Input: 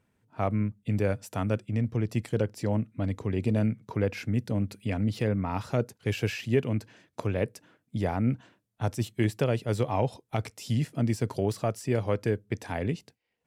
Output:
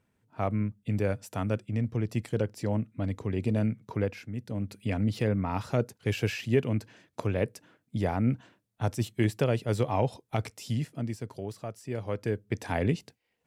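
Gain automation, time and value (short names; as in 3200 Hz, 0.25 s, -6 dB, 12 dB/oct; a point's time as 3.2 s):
4.03 s -1.5 dB
4.27 s -10 dB
4.86 s 0 dB
10.52 s 0 dB
11.28 s -9.5 dB
11.78 s -9.5 dB
12.74 s +3 dB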